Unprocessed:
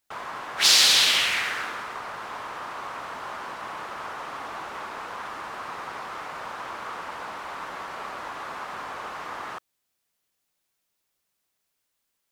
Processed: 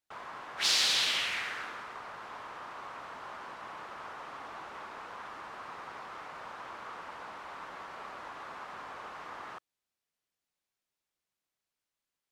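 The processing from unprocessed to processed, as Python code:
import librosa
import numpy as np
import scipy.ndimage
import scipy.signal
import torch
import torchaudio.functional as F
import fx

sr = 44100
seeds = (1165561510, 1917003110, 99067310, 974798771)

y = fx.high_shelf(x, sr, hz=9600.0, db=-10.0)
y = y * librosa.db_to_amplitude(-8.5)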